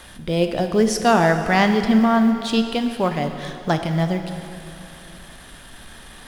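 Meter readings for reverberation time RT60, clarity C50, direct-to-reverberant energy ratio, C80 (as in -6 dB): 2.8 s, 7.5 dB, 6.0 dB, 8.0 dB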